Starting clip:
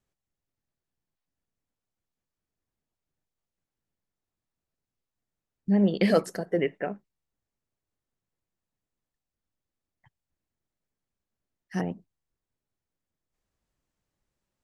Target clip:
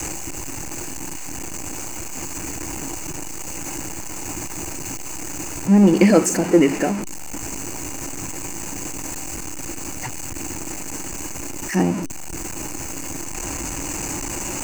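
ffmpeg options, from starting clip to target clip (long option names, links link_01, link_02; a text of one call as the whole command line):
ffmpeg -i in.wav -af "aeval=exprs='val(0)+0.5*0.0376*sgn(val(0))':channel_layout=same,adynamicequalizer=threshold=0.00891:dfrequency=220:dqfactor=1.8:tfrequency=220:tqfactor=1.8:attack=5:release=100:ratio=0.375:range=2:mode=boostabove:tftype=bell,asoftclip=type=hard:threshold=-11.5dB,superequalizer=6b=2.82:9b=1.78:12b=1.58:13b=0.316:15b=3.55,volume=4.5dB" out.wav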